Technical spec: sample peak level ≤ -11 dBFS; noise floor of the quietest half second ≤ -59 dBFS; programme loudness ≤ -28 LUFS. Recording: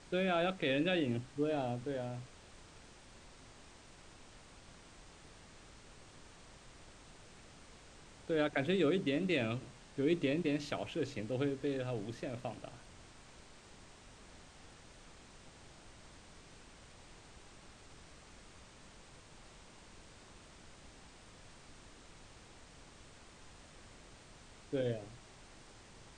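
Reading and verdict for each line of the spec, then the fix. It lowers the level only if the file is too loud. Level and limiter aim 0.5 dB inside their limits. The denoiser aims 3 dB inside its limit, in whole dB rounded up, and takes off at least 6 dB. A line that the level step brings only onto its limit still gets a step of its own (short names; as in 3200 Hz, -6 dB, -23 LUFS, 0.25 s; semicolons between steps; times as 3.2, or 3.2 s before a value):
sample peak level -19.5 dBFS: OK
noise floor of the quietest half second -57 dBFS: fail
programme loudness -36.0 LUFS: OK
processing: denoiser 6 dB, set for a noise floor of -57 dBFS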